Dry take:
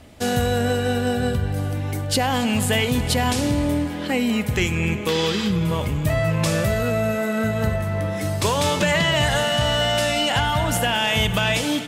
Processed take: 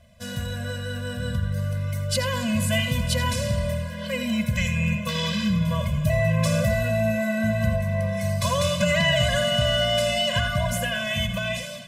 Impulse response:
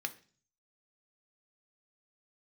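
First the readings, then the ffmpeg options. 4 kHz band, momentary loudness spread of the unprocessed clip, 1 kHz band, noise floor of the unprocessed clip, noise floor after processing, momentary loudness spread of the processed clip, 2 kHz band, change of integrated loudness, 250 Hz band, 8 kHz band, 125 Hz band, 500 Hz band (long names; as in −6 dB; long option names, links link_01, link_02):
−2.5 dB, 5 LU, −7.0 dB, −28 dBFS, −34 dBFS, 8 LU, −3.0 dB, −3.0 dB, −4.0 dB, −4.0 dB, −1.0 dB, −3.0 dB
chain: -filter_complex "[0:a]dynaudnorm=framelen=280:gausssize=9:maxgain=6.5dB,asplit=2[link_01][link_02];[1:a]atrim=start_sample=2205,adelay=83[link_03];[link_02][link_03]afir=irnorm=-1:irlink=0,volume=-10.5dB[link_04];[link_01][link_04]amix=inputs=2:normalize=0,afftfilt=real='re*eq(mod(floor(b*sr/1024/240),2),0)':imag='im*eq(mod(floor(b*sr/1024/240),2),0)':win_size=1024:overlap=0.75,volume=-6.5dB"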